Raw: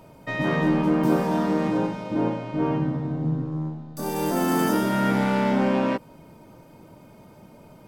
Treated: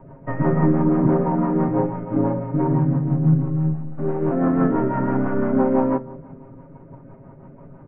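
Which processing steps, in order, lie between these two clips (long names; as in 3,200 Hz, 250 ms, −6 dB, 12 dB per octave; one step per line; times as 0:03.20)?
variable-slope delta modulation 16 kbit/s
low-shelf EQ 120 Hz +6.5 dB
comb filter 7.4 ms, depth 80%
convolution reverb RT60 1.8 s, pre-delay 5 ms, DRR 13 dB
rotating-speaker cabinet horn 6 Hz
low-pass filter 1,400 Hz 24 dB per octave
level +3.5 dB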